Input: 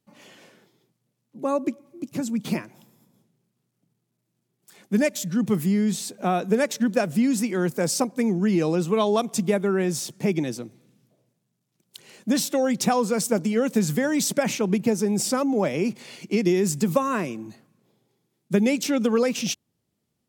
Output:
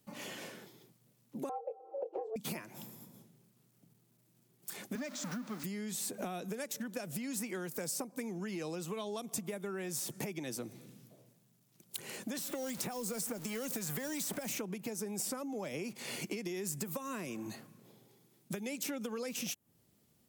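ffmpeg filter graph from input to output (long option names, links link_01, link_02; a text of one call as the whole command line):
ffmpeg -i in.wav -filter_complex "[0:a]asettb=1/sr,asplit=3[link_01][link_02][link_03];[link_01]atrim=end=1.494[link_04];[link_02]atrim=start=1.49:end=2.36,asetpts=PTS-STARTPTS,afade=type=in:duration=0.004:curve=qsin,afade=type=out:start_time=0.866:duration=0.004:curve=qsin,lowpass=frequency=610:width_type=q:width=2.9,afreqshift=210,asplit=2[link_05][link_06];[link_06]adelay=24,volume=-7dB[link_07];[link_05][link_07]amix=inputs=2:normalize=0,atrim=end_sample=38367[link_08];[link_03]atrim=start=2.356[link_09];[link_04][link_08]acrossfade=duration=0.004:curve1=hsin:curve2=qsin[link_10];[link_10][link_09]acrossfade=duration=0.004:curve1=qsin:curve2=hsin,asettb=1/sr,asplit=3[link_11][link_12][link_13];[link_11]atrim=end=4.954[link_14];[link_12]atrim=start=4.95:end=5.64,asetpts=PTS-STARTPTS,afade=type=in:duration=0.004:curve=qsin,afade=type=out:start_time=0.686:duration=0.004:curve=qsin,aeval=exprs='val(0)+0.5*0.0398*sgn(val(0))':channel_layout=same,highpass=frequency=190:width=0.5412,highpass=frequency=190:width=1.3066,equalizer=frequency=260:width_type=q:width=4:gain=10,equalizer=frequency=440:width_type=q:width=4:gain=-7,equalizer=frequency=1300:width_type=q:width=4:gain=5,equalizer=frequency=3000:width_type=q:width=4:gain=-5,lowpass=frequency=6200:width=0.5412,lowpass=frequency=6200:width=1.3066,acrusher=bits=7:mix=0:aa=0.5[link_15];[link_13]atrim=start=5.636[link_16];[link_14][link_15]acrossfade=duration=0.004:curve1=hsin:curve2=qsin[link_17];[link_17][link_16]acrossfade=duration=0.004:curve1=qsin:curve2=hsin,asettb=1/sr,asplit=3[link_18][link_19][link_20];[link_18]atrim=end=12.384[link_21];[link_19]atrim=start=12.38:end=14.57,asetpts=PTS-STARTPTS,afade=type=in:duration=0.004:curve=qsin,afade=type=out:start_time=2.186:duration=0.004:curve=qsin,aeval=exprs='val(0)+0.5*0.0224*sgn(val(0))':channel_layout=same,agate=range=-33dB:threshold=-31dB:ratio=3:release=100:detection=peak,acrossover=split=99|660|3400[link_22][link_23][link_24][link_25];[link_22]acompressor=threshold=-55dB:ratio=3[link_26];[link_23]acompressor=threshold=-31dB:ratio=3[link_27];[link_24]acompressor=threshold=-41dB:ratio=3[link_28];[link_25]acompressor=threshold=-36dB:ratio=3[link_29];[link_26][link_27][link_28][link_29]amix=inputs=4:normalize=0[link_30];[link_20]atrim=start=14.566[link_31];[link_21][link_30]acrossfade=duration=0.004:curve1=hsin:curve2=qsin[link_32];[link_32][link_31]acrossfade=duration=0.004:curve1=qsin:curve2=hsin,acompressor=threshold=-35dB:ratio=6,highshelf=frequency=11000:gain=10.5,acrossover=split=510|2500|7400[link_33][link_34][link_35][link_36];[link_33]acompressor=threshold=-47dB:ratio=4[link_37];[link_34]acompressor=threshold=-49dB:ratio=4[link_38];[link_35]acompressor=threshold=-54dB:ratio=4[link_39];[link_36]acompressor=threshold=-43dB:ratio=4[link_40];[link_37][link_38][link_39][link_40]amix=inputs=4:normalize=0,volume=5dB" out.wav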